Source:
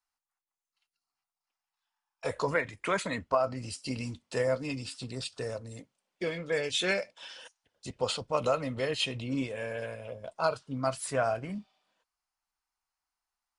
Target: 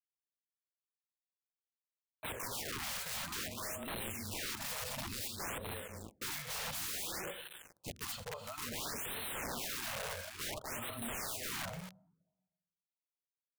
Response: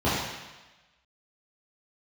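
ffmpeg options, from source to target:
-filter_complex "[0:a]adynamicequalizer=threshold=0.00708:dfrequency=1500:dqfactor=1.1:tfrequency=1500:tqfactor=1.1:attack=5:release=100:ratio=0.375:range=2.5:mode=boostabove:tftype=bell,alimiter=limit=0.0944:level=0:latency=1:release=456,aecho=1:1:83|252|295|398:0.2|0.422|0.501|0.178,afreqshift=-22,flanger=delay=0.3:depth=1.3:regen=-86:speed=0.55:shape=sinusoidal,acrusher=bits=7:mix=0:aa=0.000001,acrossover=split=1200[s0][s1];[s0]aeval=exprs='val(0)*(1-0.7/2+0.7/2*cos(2*PI*1.8*n/s))':c=same[s2];[s1]aeval=exprs='val(0)*(1-0.7/2-0.7/2*cos(2*PI*1.8*n/s))':c=same[s3];[s2][s3]amix=inputs=2:normalize=0,asplit=2[s4][s5];[s5]equalizer=f=3500:t=o:w=1.6:g=-15[s6];[1:a]atrim=start_sample=2205,lowpass=1000,adelay=34[s7];[s6][s7]afir=irnorm=-1:irlink=0,volume=0.0126[s8];[s4][s8]amix=inputs=2:normalize=0,asettb=1/sr,asplit=3[s9][s10][s11];[s9]atrim=end=8.114[s12];[s10]atrim=start=8.11:end=8.58,asetpts=PTS-STARTPTS,afade=t=in:d=0.004:c=qsin,afade=t=out:st=0.466:d=0.004:c=qsin,acompressor=threshold=0.00631:ratio=16[s13];[s11]atrim=start=8.576[s14];[s12][s13]acrossfade=d=0.004:c1=hsin:c2=qsin[s15];[s15][s14]acrossfade=d=0.004:c1=qsin:c2=hsin,aeval=exprs='(mod(94.4*val(0)+1,2)-1)/94.4':c=same,afftfilt=real='re*(1-between(b*sr/1024,290*pow(6100/290,0.5+0.5*sin(2*PI*0.57*pts/sr))/1.41,290*pow(6100/290,0.5+0.5*sin(2*PI*0.57*pts/sr))*1.41))':imag='im*(1-between(b*sr/1024,290*pow(6100/290,0.5+0.5*sin(2*PI*0.57*pts/sr))/1.41,290*pow(6100/290,0.5+0.5*sin(2*PI*0.57*pts/sr))*1.41))':win_size=1024:overlap=0.75,volume=1.68"

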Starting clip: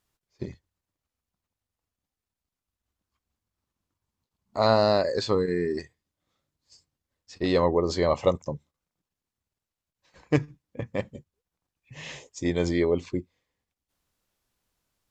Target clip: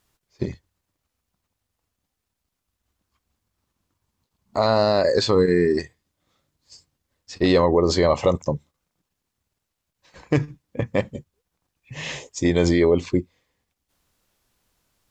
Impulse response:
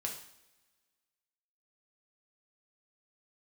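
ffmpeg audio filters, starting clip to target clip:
-af "alimiter=level_in=5.62:limit=0.891:release=50:level=0:latency=1,volume=0.473"

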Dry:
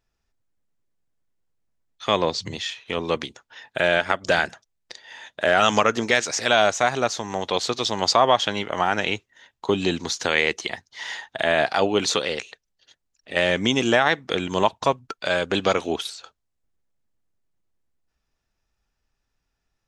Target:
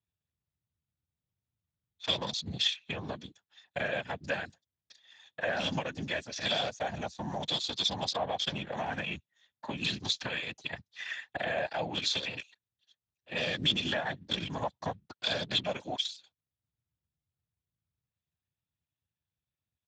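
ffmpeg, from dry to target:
-filter_complex "[0:a]acrossover=split=660|4200[s0][s1][s2];[s0]acompressor=threshold=0.02:ratio=4[s3];[s1]acompressor=threshold=0.0282:ratio=4[s4];[s2]acompressor=threshold=0.00794:ratio=4[s5];[s3][s4][s5]amix=inputs=3:normalize=0,afwtdn=0.0158,aecho=1:1:1.2:0.89,afftfilt=real='hypot(re,im)*cos(2*PI*random(0))':imag='hypot(re,im)*sin(2*PI*random(1))':win_size=512:overlap=0.75,equalizer=f=500:t=o:w=1:g=5,equalizer=f=1000:t=o:w=1:g=-6,equalizer=f=4000:t=o:w=1:g=9,acrossover=split=210|2800[s6][s7][s8];[s6]acontrast=66[s9];[s9][s7][s8]amix=inputs=3:normalize=0,lowpass=f=9700:w=0.5412,lowpass=f=9700:w=1.3066,bass=f=250:g=0,treble=f=4000:g=5" -ar 32000 -c:a libspeex -b:a 15k

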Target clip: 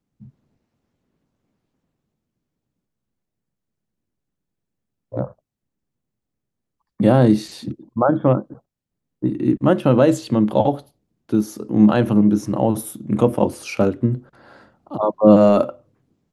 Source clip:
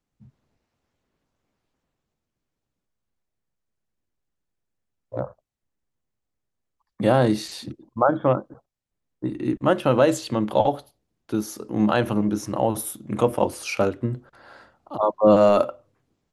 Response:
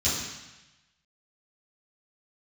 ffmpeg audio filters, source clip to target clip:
-af "equalizer=f=190:w=0.54:g=10.5,volume=0.841"

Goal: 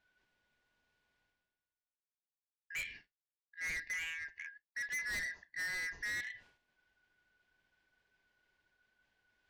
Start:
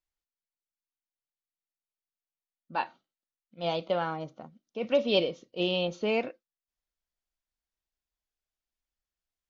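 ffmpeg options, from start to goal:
-af "afftfilt=real='real(if(lt(b,272),68*(eq(floor(b/68),0)*3+eq(floor(b/68),1)*0+eq(floor(b/68),2)*1+eq(floor(b/68),3)*2)+mod(b,68),b),0)':imag='imag(if(lt(b,272),68*(eq(floor(b/68),0)*3+eq(floor(b/68),1)*0+eq(floor(b/68),2)*1+eq(floor(b/68),3)*2)+mod(b,68),b),0)':win_size=2048:overlap=0.75,lowpass=2900,bandreject=f=1300:w=5.1,agate=range=0.0224:threshold=0.00178:ratio=3:detection=peak,adynamicequalizer=threshold=0.00891:dfrequency=2100:dqfactor=1.2:tfrequency=2100:tqfactor=1.2:attack=5:release=100:ratio=0.375:range=3.5:mode=cutabove:tftype=bell,areverse,acompressor=mode=upward:threshold=0.01:ratio=2.5,areverse,lowshelf=f=63:g=10.5,asoftclip=type=tanh:threshold=0.0158"

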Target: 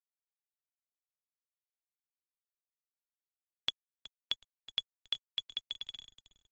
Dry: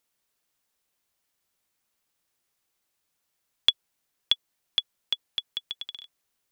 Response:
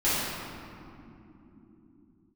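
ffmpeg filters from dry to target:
-filter_complex "[0:a]highshelf=f=9000:g=-10,acompressor=threshold=0.0708:ratio=3,asettb=1/sr,asplit=3[s0][s1][s2];[s0]atrim=end=3.704[s3];[s1]atrim=start=3.7:end=6.02,asetpts=PTS-STARTPTS,afade=t=in:d=0.004:c=qsin,afade=t=out:st=2.316:d=0.004:c=qsin,adynamicequalizer=threshold=0.00708:dfrequency=2700:dqfactor=0.78:tfrequency=2700:tqfactor=0.78:attack=5:release=100:ratio=0.375:range=2.5:mode=boostabove:tftype=bell[s4];[s2]atrim=start=6.016[s5];[s3][s4]acrossfade=d=0.004:c1=hsin:c2=qsin[s6];[s6][s5]acrossfade=d=0.004:c1=qsin:c2=hsin,aecho=1:1:371|742:0.126|0.0302,acrusher=bits=8:dc=4:mix=0:aa=0.000001,volume=0.422" -ar 44100 -c:a libmp3lame -b:a 32k

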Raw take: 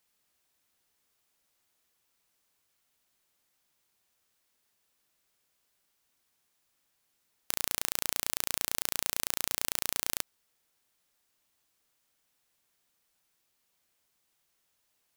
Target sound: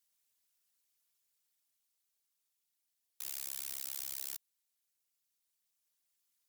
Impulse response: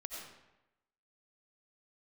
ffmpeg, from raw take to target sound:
-af "tiltshelf=f=1200:g=-7,dynaudnorm=f=360:g=21:m=3.98,afftfilt=real='hypot(re,im)*cos(2*PI*random(0))':imag='hypot(re,im)*sin(2*PI*random(1))':win_size=512:overlap=0.75,asetrate=103194,aresample=44100,volume=1.12"

